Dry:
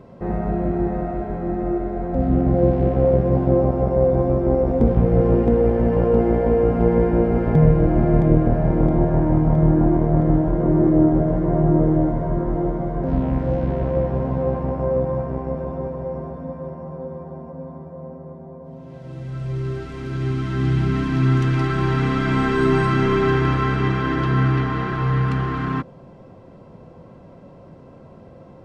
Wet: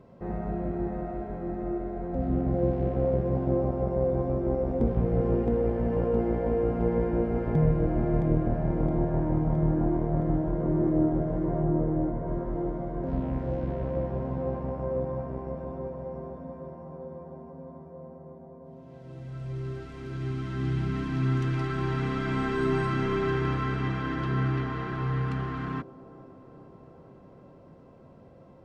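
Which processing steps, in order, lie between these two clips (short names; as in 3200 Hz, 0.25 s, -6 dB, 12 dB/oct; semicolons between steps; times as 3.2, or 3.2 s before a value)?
11.64–12.28 high shelf 3900 Hz -10.5 dB; on a send: band-limited delay 0.423 s, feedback 73%, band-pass 420 Hz, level -16 dB; on the sum: gain -9 dB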